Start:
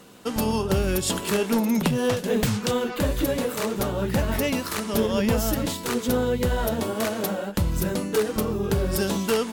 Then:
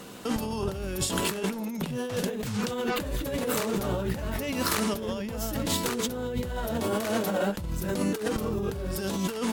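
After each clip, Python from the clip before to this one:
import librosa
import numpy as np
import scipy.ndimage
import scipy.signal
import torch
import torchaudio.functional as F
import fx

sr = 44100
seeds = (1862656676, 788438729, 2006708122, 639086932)

y = fx.over_compress(x, sr, threshold_db=-30.0, ratio=-1.0)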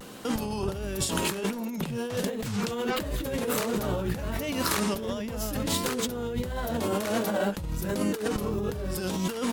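y = fx.vibrato(x, sr, rate_hz=1.4, depth_cents=80.0)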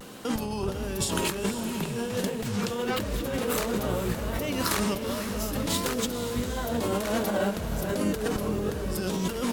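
y = fx.echo_diffused(x, sr, ms=494, feedback_pct=47, wet_db=-8.5)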